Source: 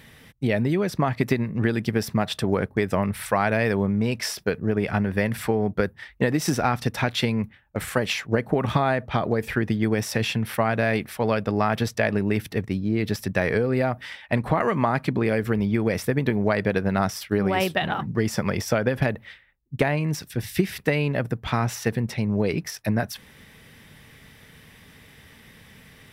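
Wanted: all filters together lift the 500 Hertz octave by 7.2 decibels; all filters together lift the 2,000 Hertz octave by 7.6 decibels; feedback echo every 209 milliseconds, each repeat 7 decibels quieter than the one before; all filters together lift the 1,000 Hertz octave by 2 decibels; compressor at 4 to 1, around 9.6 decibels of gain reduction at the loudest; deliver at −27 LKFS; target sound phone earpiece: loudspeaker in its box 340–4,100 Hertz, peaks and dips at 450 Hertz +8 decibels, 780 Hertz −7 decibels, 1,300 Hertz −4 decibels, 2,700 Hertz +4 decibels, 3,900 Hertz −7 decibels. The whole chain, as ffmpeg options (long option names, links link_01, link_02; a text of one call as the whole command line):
ffmpeg -i in.wav -af "equalizer=frequency=500:width_type=o:gain=3.5,equalizer=frequency=1000:width_type=o:gain=4.5,equalizer=frequency=2000:width_type=o:gain=8,acompressor=threshold=-25dB:ratio=4,highpass=340,equalizer=frequency=450:width_type=q:width=4:gain=8,equalizer=frequency=780:width_type=q:width=4:gain=-7,equalizer=frequency=1300:width_type=q:width=4:gain=-4,equalizer=frequency=2700:width_type=q:width=4:gain=4,equalizer=frequency=3900:width_type=q:width=4:gain=-7,lowpass=frequency=4100:width=0.5412,lowpass=frequency=4100:width=1.3066,aecho=1:1:209|418|627|836|1045:0.447|0.201|0.0905|0.0407|0.0183,volume=1dB" out.wav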